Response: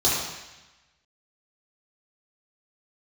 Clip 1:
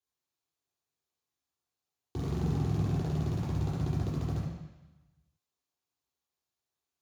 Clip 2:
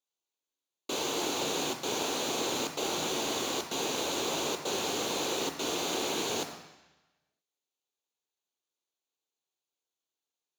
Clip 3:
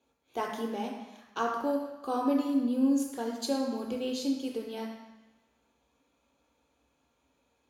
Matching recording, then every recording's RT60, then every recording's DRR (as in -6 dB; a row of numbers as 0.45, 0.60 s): 1; 1.1, 1.1, 1.1 s; -8.5, 5.0, -0.5 dB